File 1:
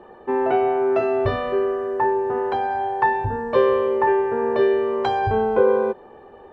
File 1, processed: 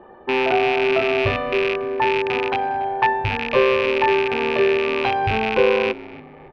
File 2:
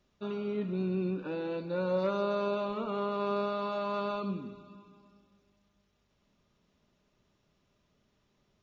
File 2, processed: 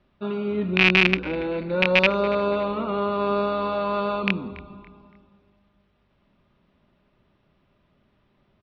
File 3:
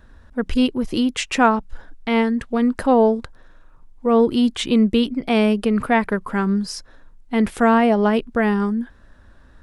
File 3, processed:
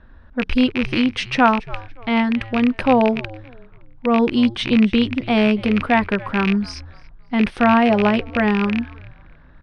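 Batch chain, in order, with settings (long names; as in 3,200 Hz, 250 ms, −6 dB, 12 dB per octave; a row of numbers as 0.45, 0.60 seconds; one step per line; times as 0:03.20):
loose part that buzzes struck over −33 dBFS, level −12 dBFS
Savitzky-Golay smoothing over 15 samples
notch filter 450 Hz, Q 12
echo with shifted repeats 283 ms, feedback 33%, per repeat −120 Hz, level −19.5 dB
low-pass that shuts in the quiet parts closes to 2,900 Hz, open at −18 dBFS
normalise the peak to −3 dBFS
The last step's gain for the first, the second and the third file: +0.5, +8.5, +1.0 decibels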